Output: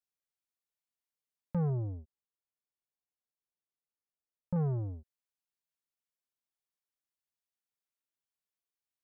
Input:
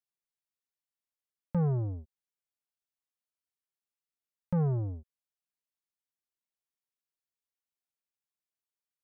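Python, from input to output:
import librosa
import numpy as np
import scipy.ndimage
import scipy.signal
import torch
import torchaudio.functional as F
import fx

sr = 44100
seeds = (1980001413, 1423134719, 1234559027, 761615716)

y = fx.lowpass(x, sr, hz=1100.0, slope=12, at=(1.7, 4.56))
y = y * 10.0 ** (-3.0 / 20.0)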